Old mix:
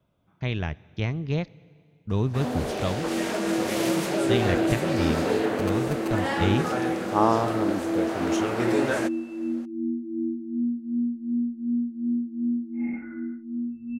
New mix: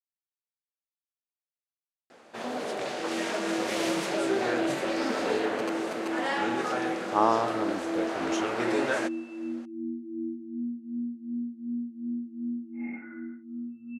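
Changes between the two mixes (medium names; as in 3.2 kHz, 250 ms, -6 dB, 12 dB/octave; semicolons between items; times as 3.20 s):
speech: muted; first sound: add Bessel low-pass 7.5 kHz, order 2; master: add high-pass 480 Hz 6 dB/octave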